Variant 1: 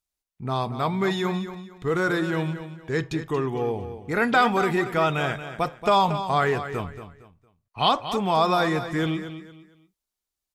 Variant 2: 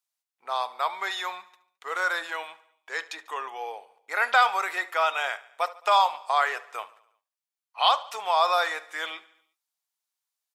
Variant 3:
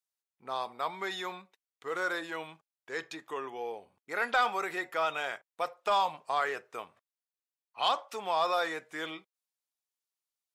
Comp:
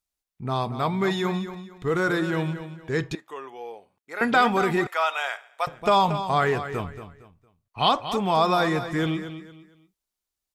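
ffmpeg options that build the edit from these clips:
-filter_complex "[0:a]asplit=3[s0][s1][s2];[s0]atrim=end=3.152[s3];[2:a]atrim=start=3.148:end=4.212[s4];[s1]atrim=start=4.208:end=4.872[s5];[1:a]atrim=start=4.868:end=5.672[s6];[s2]atrim=start=5.668[s7];[s3][s4]acrossfade=d=0.004:c1=hsin:c2=hsin[s8];[s8][s5]acrossfade=d=0.004:c1=hsin:c2=hsin[s9];[s9][s6]acrossfade=d=0.004:c1=hsin:c2=hsin[s10];[s10][s7]acrossfade=d=0.004:c1=hsin:c2=hsin"

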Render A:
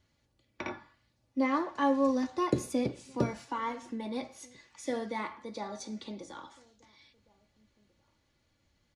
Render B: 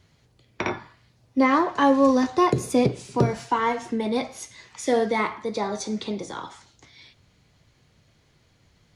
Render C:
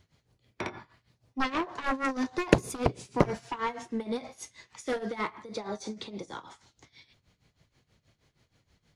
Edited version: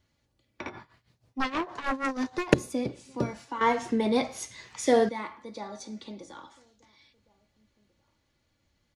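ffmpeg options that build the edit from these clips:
-filter_complex "[0:a]asplit=3[s0][s1][s2];[s0]atrim=end=0.672[s3];[2:a]atrim=start=0.668:end=2.542[s4];[s1]atrim=start=2.538:end=3.612[s5];[1:a]atrim=start=3.608:end=5.092[s6];[s2]atrim=start=5.088[s7];[s3][s4]acrossfade=d=0.004:c1=hsin:c2=hsin[s8];[s8][s5]acrossfade=d=0.004:c1=hsin:c2=hsin[s9];[s9][s6]acrossfade=d=0.004:c1=hsin:c2=hsin[s10];[s10][s7]acrossfade=d=0.004:c1=hsin:c2=hsin"

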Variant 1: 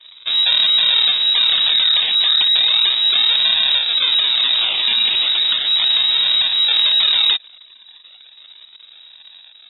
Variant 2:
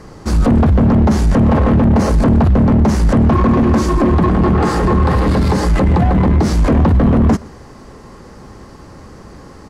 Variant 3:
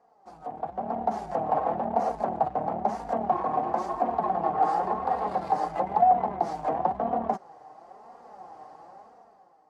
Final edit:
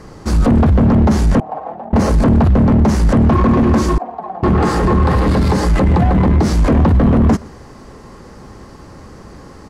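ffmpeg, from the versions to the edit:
-filter_complex "[2:a]asplit=2[s0][s1];[1:a]asplit=3[s2][s3][s4];[s2]atrim=end=1.402[s5];[s0]atrim=start=1.398:end=1.932[s6];[s3]atrim=start=1.928:end=3.982[s7];[s1]atrim=start=3.978:end=4.432[s8];[s4]atrim=start=4.428[s9];[s5][s6]acrossfade=d=0.004:c1=hsin:c2=hsin[s10];[s10][s7]acrossfade=d=0.004:c1=hsin:c2=hsin[s11];[s11][s8]acrossfade=d=0.004:c1=hsin:c2=hsin[s12];[s12][s9]acrossfade=d=0.004:c1=hsin:c2=hsin"

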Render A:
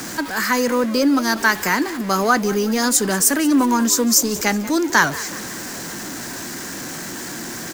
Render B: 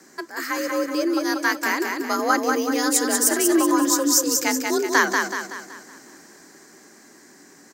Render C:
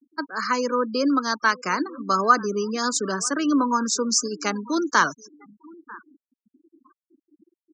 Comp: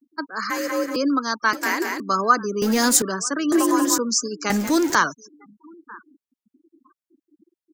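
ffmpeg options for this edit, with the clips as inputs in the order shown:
-filter_complex "[1:a]asplit=3[s0][s1][s2];[0:a]asplit=2[s3][s4];[2:a]asplit=6[s5][s6][s7][s8][s9][s10];[s5]atrim=end=0.502[s11];[s0]atrim=start=0.498:end=0.962[s12];[s6]atrim=start=0.958:end=1.532[s13];[s1]atrim=start=1.528:end=2.002[s14];[s7]atrim=start=1.998:end=2.622[s15];[s3]atrim=start=2.618:end=3.022[s16];[s8]atrim=start=3.018:end=3.522[s17];[s2]atrim=start=3.518:end=3.982[s18];[s9]atrim=start=3.978:end=4.502[s19];[s4]atrim=start=4.498:end=4.952[s20];[s10]atrim=start=4.948[s21];[s11][s12]acrossfade=d=0.004:c1=hsin:c2=hsin[s22];[s22][s13]acrossfade=d=0.004:c1=hsin:c2=hsin[s23];[s23][s14]acrossfade=d=0.004:c1=hsin:c2=hsin[s24];[s24][s15]acrossfade=d=0.004:c1=hsin:c2=hsin[s25];[s25][s16]acrossfade=d=0.004:c1=hsin:c2=hsin[s26];[s26][s17]acrossfade=d=0.004:c1=hsin:c2=hsin[s27];[s27][s18]acrossfade=d=0.004:c1=hsin:c2=hsin[s28];[s28][s19]acrossfade=d=0.004:c1=hsin:c2=hsin[s29];[s29][s20]acrossfade=d=0.004:c1=hsin:c2=hsin[s30];[s30][s21]acrossfade=d=0.004:c1=hsin:c2=hsin"

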